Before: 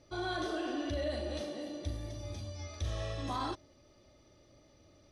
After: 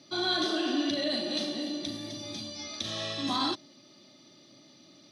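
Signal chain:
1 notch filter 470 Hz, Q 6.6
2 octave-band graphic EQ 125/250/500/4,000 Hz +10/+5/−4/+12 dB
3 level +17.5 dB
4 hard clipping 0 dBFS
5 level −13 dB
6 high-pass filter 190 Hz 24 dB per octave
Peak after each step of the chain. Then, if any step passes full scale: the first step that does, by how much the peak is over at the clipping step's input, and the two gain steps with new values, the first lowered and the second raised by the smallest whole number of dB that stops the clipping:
−24.5, −20.5, −3.0, −3.0, −16.0, −17.5 dBFS
no step passes full scale

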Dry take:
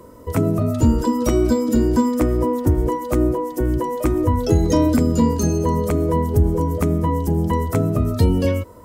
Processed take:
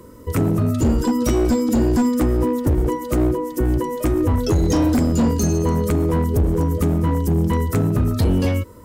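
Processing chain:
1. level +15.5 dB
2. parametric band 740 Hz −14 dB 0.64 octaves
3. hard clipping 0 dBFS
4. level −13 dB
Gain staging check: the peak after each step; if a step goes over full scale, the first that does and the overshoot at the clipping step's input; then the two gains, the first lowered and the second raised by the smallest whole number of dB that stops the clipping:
+10.5, +10.0, 0.0, −13.0 dBFS
step 1, 10.0 dB
step 1 +5.5 dB, step 4 −3 dB

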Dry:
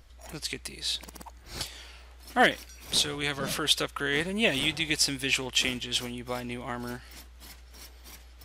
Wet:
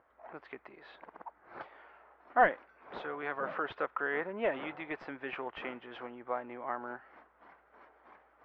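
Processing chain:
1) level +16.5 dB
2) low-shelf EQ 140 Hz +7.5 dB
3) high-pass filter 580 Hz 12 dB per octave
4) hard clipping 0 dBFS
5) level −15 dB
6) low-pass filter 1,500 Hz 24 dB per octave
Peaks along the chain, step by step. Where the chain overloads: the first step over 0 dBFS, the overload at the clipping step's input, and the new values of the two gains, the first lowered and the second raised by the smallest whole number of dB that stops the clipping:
+6.5, +7.5, +7.0, 0.0, −15.0, −14.5 dBFS
step 1, 7.0 dB
step 1 +9.5 dB, step 5 −8 dB

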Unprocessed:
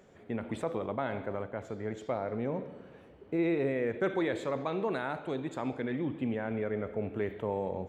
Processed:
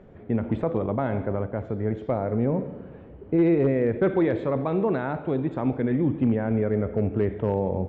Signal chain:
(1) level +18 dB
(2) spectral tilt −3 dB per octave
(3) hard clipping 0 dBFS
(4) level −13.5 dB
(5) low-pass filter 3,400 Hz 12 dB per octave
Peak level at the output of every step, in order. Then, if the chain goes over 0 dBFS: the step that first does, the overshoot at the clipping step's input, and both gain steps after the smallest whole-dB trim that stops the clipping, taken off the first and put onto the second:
−1.5, +3.0, 0.0, −13.5, −13.5 dBFS
step 2, 3.0 dB
step 1 +15 dB, step 4 −10.5 dB

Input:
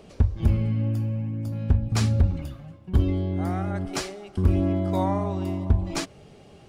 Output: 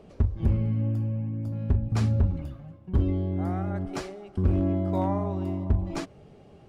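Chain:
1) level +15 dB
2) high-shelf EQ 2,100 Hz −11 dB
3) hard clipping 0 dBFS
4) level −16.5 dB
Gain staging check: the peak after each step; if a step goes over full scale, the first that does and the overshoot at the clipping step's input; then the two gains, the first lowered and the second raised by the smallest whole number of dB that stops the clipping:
+3.5, +3.5, 0.0, −16.5 dBFS
step 1, 3.5 dB
step 1 +11 dB, step 4 −12.5 dB

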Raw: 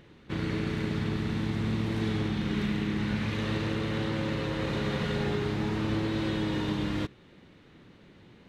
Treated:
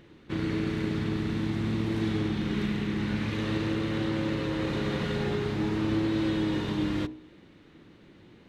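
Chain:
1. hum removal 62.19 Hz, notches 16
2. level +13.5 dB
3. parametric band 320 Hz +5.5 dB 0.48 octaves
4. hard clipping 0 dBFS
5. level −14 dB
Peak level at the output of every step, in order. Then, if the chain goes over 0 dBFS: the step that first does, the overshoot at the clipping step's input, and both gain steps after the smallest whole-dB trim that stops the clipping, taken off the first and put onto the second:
−16.0, −2.5, −2.0, −2.0, −16.0 dBFS
no step passes full scale

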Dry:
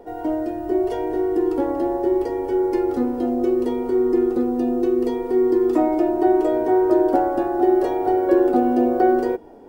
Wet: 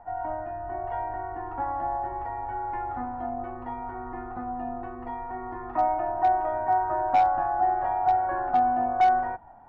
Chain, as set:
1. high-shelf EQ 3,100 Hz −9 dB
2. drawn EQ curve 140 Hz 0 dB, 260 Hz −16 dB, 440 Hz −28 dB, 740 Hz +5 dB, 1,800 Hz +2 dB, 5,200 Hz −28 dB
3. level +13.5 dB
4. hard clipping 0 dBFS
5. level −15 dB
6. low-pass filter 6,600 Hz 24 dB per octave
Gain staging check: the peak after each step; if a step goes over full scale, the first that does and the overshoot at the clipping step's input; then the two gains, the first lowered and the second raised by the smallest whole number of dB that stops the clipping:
−5.5, −8.5, +5.0, 0.0, −15.0, −14.5 dBFS
step 3, 5.0 dB
step 3 +8.5 dB, step 5 −10 dB

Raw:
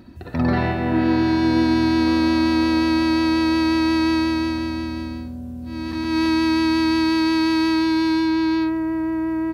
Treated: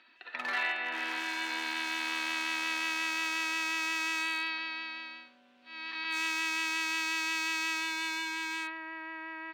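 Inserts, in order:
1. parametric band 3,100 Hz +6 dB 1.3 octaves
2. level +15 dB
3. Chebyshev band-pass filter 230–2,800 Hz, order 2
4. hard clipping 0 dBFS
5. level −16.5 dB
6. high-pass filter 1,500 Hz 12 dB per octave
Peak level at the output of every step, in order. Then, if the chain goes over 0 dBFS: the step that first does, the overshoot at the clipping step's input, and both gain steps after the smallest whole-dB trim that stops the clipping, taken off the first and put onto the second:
−8.5, +6.5, +7.0, 0.0, −16.5, −20.0 dBFS
step 2, 7.0 dB
step 2 +8 dB, step 5 −9.5 dB

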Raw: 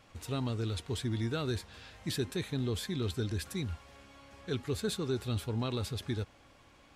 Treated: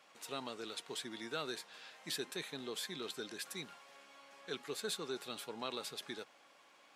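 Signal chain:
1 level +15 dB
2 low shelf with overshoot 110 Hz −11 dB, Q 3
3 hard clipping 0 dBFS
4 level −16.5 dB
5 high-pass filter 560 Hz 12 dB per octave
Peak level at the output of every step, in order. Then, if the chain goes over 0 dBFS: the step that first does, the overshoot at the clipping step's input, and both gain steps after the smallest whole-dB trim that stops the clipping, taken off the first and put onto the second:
−6.0, −2.5, −2.5, −19.0, −25.5 dBFS
no step passes full scale

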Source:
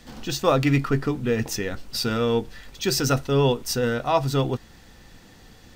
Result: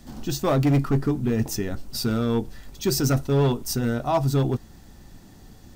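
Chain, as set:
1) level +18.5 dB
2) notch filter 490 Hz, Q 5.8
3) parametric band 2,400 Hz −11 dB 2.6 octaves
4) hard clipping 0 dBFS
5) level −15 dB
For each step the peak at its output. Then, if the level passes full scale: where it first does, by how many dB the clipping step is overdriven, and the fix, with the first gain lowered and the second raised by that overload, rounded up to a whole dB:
+13.0, +10.0, +7.5, 0.0, −15.0 dBFS
step 1, 7.5 dB
step 1 +10.5 dB, step 5 −7 dB

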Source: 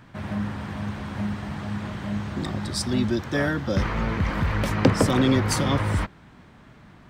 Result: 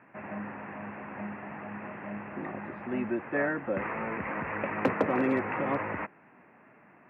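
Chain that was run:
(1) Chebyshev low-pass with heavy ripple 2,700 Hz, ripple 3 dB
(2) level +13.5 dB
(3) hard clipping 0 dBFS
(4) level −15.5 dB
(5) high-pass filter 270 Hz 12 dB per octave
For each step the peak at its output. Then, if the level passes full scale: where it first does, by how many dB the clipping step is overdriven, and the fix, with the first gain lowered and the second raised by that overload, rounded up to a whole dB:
−4.5, +9.0, 0.0, −15.5, −11.0 dBFS
step 2, 9.0 dB
step 2 +4.5 dB, step 4 −6.5 dB

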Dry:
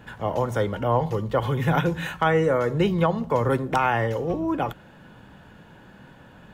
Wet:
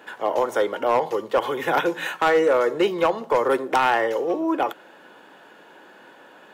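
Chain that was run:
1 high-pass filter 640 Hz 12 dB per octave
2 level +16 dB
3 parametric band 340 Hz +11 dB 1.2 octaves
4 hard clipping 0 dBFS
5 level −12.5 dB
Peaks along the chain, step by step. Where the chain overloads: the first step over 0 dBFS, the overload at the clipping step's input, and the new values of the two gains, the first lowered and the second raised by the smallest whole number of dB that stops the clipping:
−9.5, +6.5, +8.0, 0.0, −12.5 dBFS
step 2, 8.0 dB
step 2 +8 dB, step 5 −4.5 dB

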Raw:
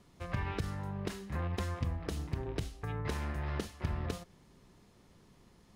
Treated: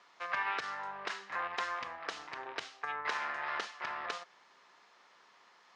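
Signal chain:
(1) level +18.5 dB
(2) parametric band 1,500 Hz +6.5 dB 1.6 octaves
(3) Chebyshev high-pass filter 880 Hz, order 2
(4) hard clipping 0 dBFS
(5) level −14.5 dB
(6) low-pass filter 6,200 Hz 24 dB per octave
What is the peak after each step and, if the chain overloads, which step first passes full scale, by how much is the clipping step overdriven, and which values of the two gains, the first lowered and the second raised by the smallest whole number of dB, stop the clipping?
−4.0, −0.5, −4.5, −4.5, −19.0, −19.0 dBFS
no step passes full scale

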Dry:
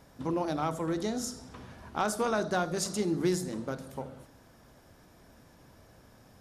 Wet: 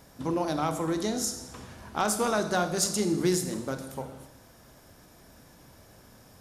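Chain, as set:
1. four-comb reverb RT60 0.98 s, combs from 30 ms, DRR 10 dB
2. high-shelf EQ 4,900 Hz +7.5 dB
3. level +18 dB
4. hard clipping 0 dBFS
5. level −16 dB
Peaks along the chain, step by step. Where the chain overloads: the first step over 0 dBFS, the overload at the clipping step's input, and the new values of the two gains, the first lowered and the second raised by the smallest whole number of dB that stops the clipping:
−17.5, −14.5, +3.5, 0.0, −16.0 dBFS
step 3, 3.5 dB
step 3 +14 dB, step 5 −12 dB

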